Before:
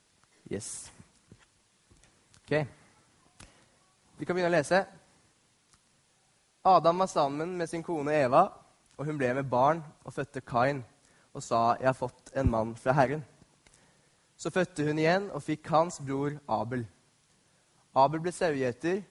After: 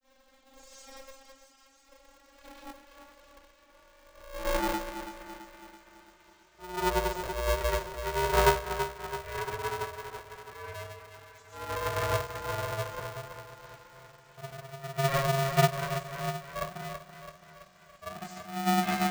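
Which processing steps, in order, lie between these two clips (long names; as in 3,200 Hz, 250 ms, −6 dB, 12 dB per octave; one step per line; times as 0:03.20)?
vocoder with a gliding carrier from C4, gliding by +10 semitones
high-pass filter 220 Hz 12 dB per octave
downward compressor 2.5 to 1, threshold −34 dBFS, peak gain reduction 11 dB
volume swells 538 ms
granular cloud, pitch spread up and down by 0 semitones
feedback echo with a high-pass in the loop 331 ms, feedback 68%, high-pass 500 Hz, level −7 dB
four-comb reverb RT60 0.35 s, combs from 27 ms, DRR −9 dB
ring modulator with a square carrier 270 Hz
level +3.5 dB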